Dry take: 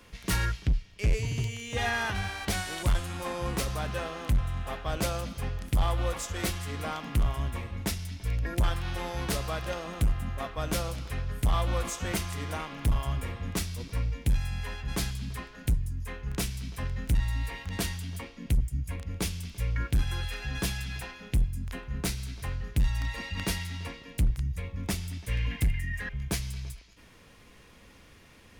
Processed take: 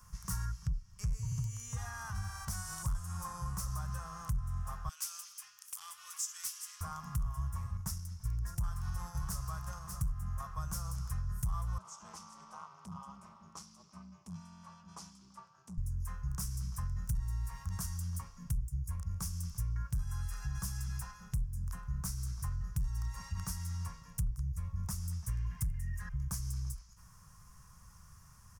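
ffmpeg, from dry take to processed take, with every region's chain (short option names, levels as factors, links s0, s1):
-filter_complex "[0:a]asettb=1/sr,asplit=3[s0][s1][s2];[s0]atrim=end=4.894[s3];[s1]atrim=start=4.89:end=6.81,asetpts=PTS-STARTPTS,afade=t=in:d=0.004:c=qsin,afade=t=out:st=1.916:d=0.004:c=qsin,highpass=f=2700:t=q:w=2,asoftclip=type=hard:threshold=0.0562[s4];[s2]atrim=start=6.806[s5];[s3][s4]acrossfade=d=0.004:c1=hsin:c2=qsin[s6];[s6][s5]acrossfade=d=0.004:c1=qsin:c2=hsin,asettb=1/sr,asplit=3[s7][s8][s9];[s7]atrim=end=7.774[s10];[s8]atrim=start=7.77:end=10.1,asetpts=PTS-STARTPTS,afade=t=in:d=0.004:c=qsin,afade=t=out:st=2.326:d=0.004:c=qsin,agate=range=0.501:threshold=0.0158:ratio=16:release=100:detection=peak,aecho=1:1:592:0.237,atrim=end_sample=102753[s11];[s9]atrim=start=10.096[s12];[s10][s11]acrossfade=d=0.004:c1=hsin:c2=qsin[s13];[s13][s12]acrossfade=d=0.004:c1=qsin:c2=hsin,asettb=1/sr,asplit=3[s14][s15][s16];[s14]atrim=end=11.784[s17];[s15]atrim=start=11.78:end=15.78,asetpts=PTS-STARTPTS,afade=t=in:d=0.004:c=qsin,afade=t=out:st=3.996:d=0.004:c=qsin,equalizer=f=1700:t=o:w=0.57:g=-15,aeval=exprs='val(0)*sin(2*PI*130*n/s)':c=same,highpass=370,lowpass=3900[s18];[s16]atrim=start=15.776[s19];[s17][s18]acrossfade=d=0.004:c1=hsin:c2=qsin[s20];[s20][s19]acrossfade=d=0.004:c1=qsin:c2=hsin,acompressor=threshold=0.0224:ratio=6,firequalizer=gain_entry='entry(160,0);entry(270,-26);entry(470,-23);entry(1100,0);entry(2200,-21);entry(3800,-20);entry(5500,1)':delay=0.05:min_phase=1,volume=1.12"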